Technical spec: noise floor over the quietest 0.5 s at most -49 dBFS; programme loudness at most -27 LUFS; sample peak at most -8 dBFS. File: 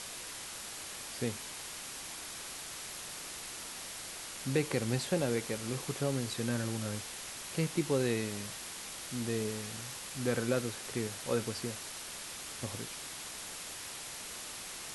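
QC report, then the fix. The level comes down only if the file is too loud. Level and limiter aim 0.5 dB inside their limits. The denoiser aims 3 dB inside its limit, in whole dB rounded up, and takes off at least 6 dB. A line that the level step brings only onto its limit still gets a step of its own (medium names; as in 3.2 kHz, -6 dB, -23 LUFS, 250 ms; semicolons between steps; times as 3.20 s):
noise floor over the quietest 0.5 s -44 dBFS: fail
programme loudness -37.0 LUFS: pass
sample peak -17.0 dBFS: pass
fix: noise reduction 8 dB, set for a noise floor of -44 dBFS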